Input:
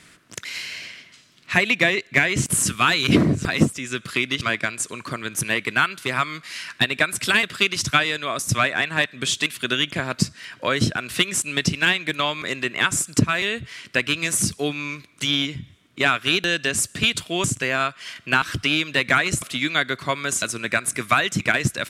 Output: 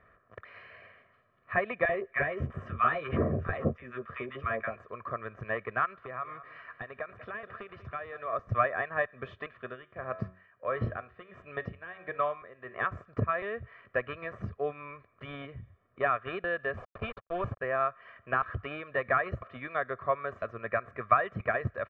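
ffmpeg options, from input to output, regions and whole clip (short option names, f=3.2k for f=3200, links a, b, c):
-filter_complex "[0:a]asettb=1/sr,asplit=3[a][b][c];[a]atrim=end=1.854[d];[b]atrim=start=1.85:end=4.76,asetpts=PTS-STARTPTS,afade=t=in:d=0.004:c=qsin,afade=t=out:st=2.906:d=0.004:c=qsin,bandreject=f=4.3k:w=5.4,asplit=2[e][f];[f]adelay=13,volume=-7dB[g];[e][g]amix=inputs=2:normalize=0,atrim=end_sample=128331,acrossover=split=900[h][i];[h]adelay=40[j];[j][i]amix=inputs=2:normalize=0,atrim=end_sample=128331[k];[c]atrim=start=4.756[l];[d][k]acrossfade=d=0.004:c1=hsin:c2=qsin[m];[m][l]acrossfade=d=0.004:c1=qsin:c2=hsin,asettb=1/sr,asplit=3[n][o][p];[n]atrim=end=5.854[q];[o]atrim=start=5.85:end=8.33,asetpts=PTS-STARTPTS,afade=t=in:d=0.004:c=qsin,afade=t=out:st=2.476:d=0.004:c=qsin,acompressor=threshold=-27dB:ratio=3:attack=3.2:release=140:knee=1:detection=peak,aecho=1:1:192|384|576|768:0.2|0.0798|0.0319|0.0128,atrim=end_sample=109368[r];[p]atrim=start=8.326[s];[q][r]acrossfade=d=0.004:c1=hsin:c2=qsin[t];[t][s]acrossfade=d=0.004:c1=qsin:c2=hsin,asettb=1/sr,asplit=3[u][v][w];[u]atrim=end=9.534[x];[v]atrim=start=9.53:end=12.79,asetpts=PTS-STARTPTS,afade=t=in:d=0.004:c=qsin,afade=t=out:st=3.256:d=0.004:c=qsin,bandreject=f=93.08:t=h:w=4,bandreject=f=186.16:t=h:w=4,bandreject=f=279.24:t=h:w=4,bandreject=f=372.32:t=h:w=4,bandreject=f=465.4:t=h:w=4,bandreject=f=558.48:t=h:w=4,bandreject=f=651.56:t=h:w=4,bandreject=f=744.64:t=h:w=4,bandreject=f=837.72:t=h:w=4,bandreject=f=930.8:t=h:w=4,bandreject=f=1.02388k:t=h:w=4,bandreject=f=1.11696k:t=h:w=4,bandreject=f=1.21004k:t=h:w=4,bandreject=f=1.30312k:t=h:w=4,bandreject=f=1.3962k:t=h:w=4,bandreject=f=1.48928k:t=h:w=4,bandreject=f=1.58236k:t=h:w=4,bandreject=f=1.67544k:t=h:w=4,bandreject=f=1.76852k:t=h:w=4,bandreject=f=1.8616k:t=h:w=4,bandreject=f=1.95468k:t=h:w=4,bandreject=f=2.04776k:t=h:w=4,bandreject=f=2.14084k:t=h:w=4,bandreject=f=2.23392k:t=h:w=4,bandreject=f=2.327k:t=h:w=4,bandreject=f=2.42008k:t=h:w=4,bandreject=f=2.51316k:t=h:w=4,bandreject=f=2.60624k:t=h:w=4,bandreject=f=2.69932k:t=h:w=4,bandreject=f=2.7924k:t=h:w=4,bandreject=f=2.88548k:t=h:w=4,bandreject=f=2.97856k:t=h:w=4,bandreject=f=3.07164k:t=h:w=4,bandreject=f=3.16472k:t=h:w=4,bandreject=f=3.2578k:t=h:w=4,bandreject=f=3.35088k:t=h:w=4,bandreject=f=3.44396k:t=h:w=4,bandreject=f=3.53704k:t=h:w=4,bandreject=f=3.63012k:t=h:w=4,tremolo=f=1.5:d=0.8[y];[w]atrim=start=12.786[z];[x][y]acrossfade=d=0.004:c1=hsin:c2=qsin[aa];[aa][z]acrossfade=d=0.004:c1=qsin:c2=hsin,asettb=1/sr,asplit=3[ab][ac][ad];[ab]atrim=end=16.774[ae];[ac]atrim=start=16.77:end=17.61,asetpts=PTS-STARTPTS,afade=t=in:d=0.004:c=qsin,afade=t=out:st=0.836:d=0.004:c=qsin,acrusher=bits=3:mix=0:aa=0.5,bandreject=f=1.9k:w=8.9[af];[ad]atrim=start=17.606[ag];[ae][af]acrossfade=d=0.004:c1=hsin:c2=qsin[ah];[ah][ag]acrossfade=d=0.004:c1=qsin:c2=hsin,lowpass=f=1.5k:w=0.5412,lowpass=f=1.5k:w=1.3066,equalizer=f=160:w=1.7:g=-12.5,aecho=1:1:1.7:0.75,volume=-6dB"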